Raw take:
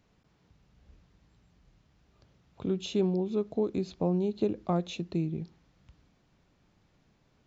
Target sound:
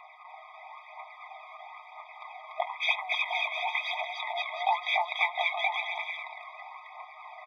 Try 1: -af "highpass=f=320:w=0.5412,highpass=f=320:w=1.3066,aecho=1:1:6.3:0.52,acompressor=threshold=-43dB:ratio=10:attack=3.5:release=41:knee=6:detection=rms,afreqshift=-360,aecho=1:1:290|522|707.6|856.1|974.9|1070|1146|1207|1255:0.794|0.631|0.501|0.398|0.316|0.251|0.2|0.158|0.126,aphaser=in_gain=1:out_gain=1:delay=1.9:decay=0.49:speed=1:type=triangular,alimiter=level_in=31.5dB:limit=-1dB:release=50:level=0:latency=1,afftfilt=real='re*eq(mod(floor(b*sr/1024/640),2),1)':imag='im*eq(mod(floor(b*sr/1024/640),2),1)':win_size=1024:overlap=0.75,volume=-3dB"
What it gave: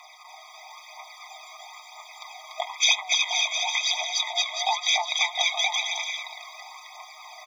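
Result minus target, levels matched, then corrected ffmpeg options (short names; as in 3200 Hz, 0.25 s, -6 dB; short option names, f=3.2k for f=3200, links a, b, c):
2000 Hz band -3.5 dB
-af "highpass=f=320:w=0.5412,highpass=f=320:w=1.3066,aecho=1:1:6.3:0.52,acompressor=threshold=-43dB:ratio=10:attack=3.5:release=41:knee=6:detection=rms,lowpass=f=2.7k:w=0.5412,lowpass=f=2.7k:w=1.3066,afreqshift=-360,aecho=1:1:290|522|707.6|856.1|974.9|1070|1146|1207|1255:0.794|0.631|0.501|0.398|0.316|0.251|0.2|0.158|0.126,aphaser=in_gain=1:out_gain=1:delay=1.9:decay=0.49:speed=1:type=triangular,alimiter=level_in=31.5dB:limit=-1dB:release=50:level=0:latency=1,afftfilt=real='re*eq(mod(floor(b*sr/1024/640),2),1)':imag='im*eq(mod(floor(b*sr/1024/640),2),1)':win_size=1024:overlap=0.75,volume=-3dB"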